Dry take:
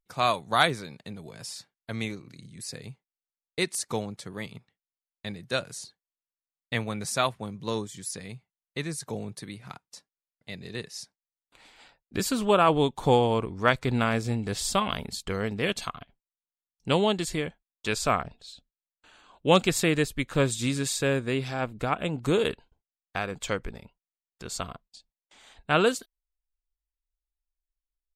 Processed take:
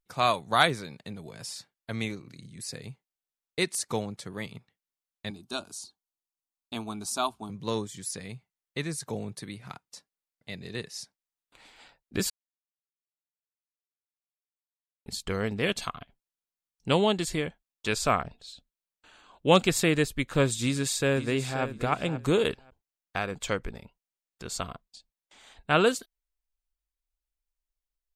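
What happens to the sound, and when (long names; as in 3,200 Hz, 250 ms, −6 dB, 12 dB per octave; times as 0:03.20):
0:05.30–0:07.50: phaser with its sweep stopped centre 510 Hz, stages 6
0:12.30–0:15.06: silence
0:20.63–0:21.64: delay throw 530 ms, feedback 15%, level −12 dB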